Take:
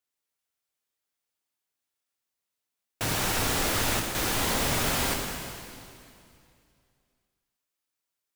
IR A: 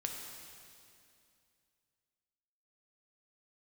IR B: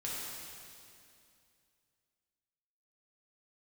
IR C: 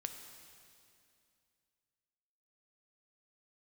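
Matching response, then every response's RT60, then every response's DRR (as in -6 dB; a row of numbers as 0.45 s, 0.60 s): A; 2.5 s, 2.5 s, 2.5 s; 1.0 dB, -7.0 dB, 5.5 dB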